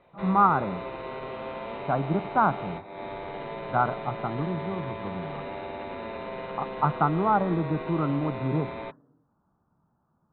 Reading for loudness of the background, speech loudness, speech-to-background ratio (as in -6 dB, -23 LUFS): -36.5 LUFS, -27.0 LUFS, 9.5 dB